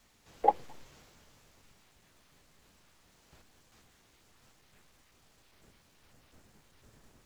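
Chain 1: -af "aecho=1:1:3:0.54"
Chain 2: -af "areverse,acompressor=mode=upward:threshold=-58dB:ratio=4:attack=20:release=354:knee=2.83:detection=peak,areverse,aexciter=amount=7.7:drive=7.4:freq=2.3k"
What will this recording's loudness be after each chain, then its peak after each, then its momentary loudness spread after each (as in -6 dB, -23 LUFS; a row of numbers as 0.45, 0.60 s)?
-35.0, -39.0 LUFS; -12.0, -6.0 dBFS; 8, 11 LU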